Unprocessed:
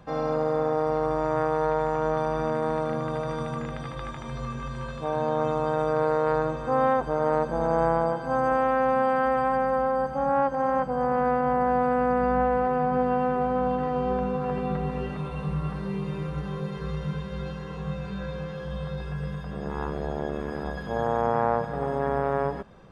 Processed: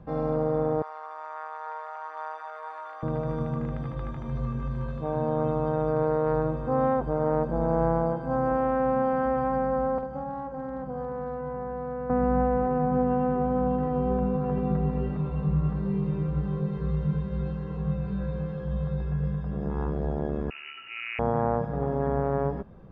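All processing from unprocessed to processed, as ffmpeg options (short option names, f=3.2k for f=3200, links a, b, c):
-filter_complex "[0:a]asettb=1/sr,asplit=3[a][b][c];[a]atrim=end=0.824[d];[b]atrim=start=0.82:end=3.03,asetpts=PTS-STARTPTS,afade=t=in:d=0.004:c=qsin,afade=t=out:st=2.206:d=0.004:c=qsin,highpass=f=950:w=0.5412,highpass=f=950:w=1.3066,aecho=1:1:846:0.531,atrim=end_sample=97461[e];[c]atrim=start=3.026[f];[d][e]acrossfade=d=0.004:c1=hsin:c2=qsin[g];[g][f]acrossfade=d=0.004:c1=qsin:c2=hsin,asettb=1/sr,asplit=3[h][i][j];[h]atrim=end=9.984[k];[i]atrim=start=9.98:end=12.1,asetpts=PTS-STARTPTS,afade=t=in:d=0.004:c=qsin,afade=t=out:st=2.116:d=0.004:c=qsin,acrossover=split=94|1200[l][m][n];[l]acompressor=threshold=-55dB:ratio=4[o];[m]acompressor=threshold=-32dB:ratio=4[p];[n]acompressor=threshold=-43dB:ratio=4[q];[o][p][q]amix=inputs=3:normalize=0,aeval=exprs='clip(val(0),-1,0.0562)':c=same,asplit=2[r][s];[s]adelay=46,volume=-7dB[t];[r][t]amix=inputs=2:normalize=0,atrim=end_sample=93492[u];[j]atrim=start=12.096[v];[k][u]acrossfade=d=0.004:c1=hsin:c2=qsin[w];[w][v]acrossfade=d=0.004:c1=qsin:c2=hsin,asettb=1/sr,asplit=3[x][y][z];[x]atrim=end=20.504[aa];[y]atrim=start=20.5:end=21.19,asetpts=PTS-STARTPTS,afade=t=in:d=0.004:c=qsin,afade=t=out:st=0.686:d=0.004:c=qsin,highpass=52,lowpass=f=2.6k:t=q:w=0.5098,lowpass=f=2.6k:t=q:w=0.6013,lowpass=f=2.6k:t=q:w=0.9,lowpass=f=2.6k:t=q:w=2.563,afreqshift=-3000[ab];[z]atrim=start=21.186[ac];[aa][ab]acrossfade=d=0.004:c1=hsin:c2=qsin[ad];[ad][ac]acrossfade=d=0.004:c1=qsin:c2=hsin,lowpass=f=1.3k:p=1,lowshelf=f=380:g=9.5,volume=-4dB"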